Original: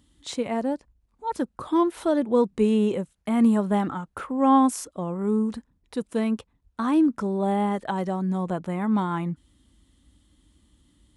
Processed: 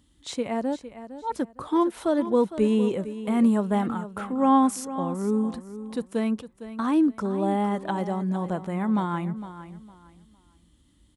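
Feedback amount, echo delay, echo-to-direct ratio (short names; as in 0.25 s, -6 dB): 26%, 0.458 s, -12.5 dB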